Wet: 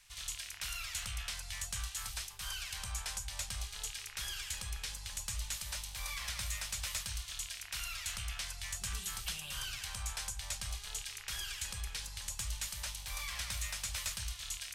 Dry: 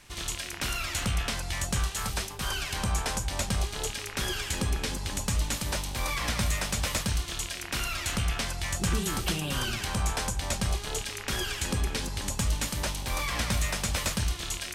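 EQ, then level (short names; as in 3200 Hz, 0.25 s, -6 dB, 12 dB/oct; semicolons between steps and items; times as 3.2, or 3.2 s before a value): passive tone stack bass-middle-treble 10-0-10; -5.5 dB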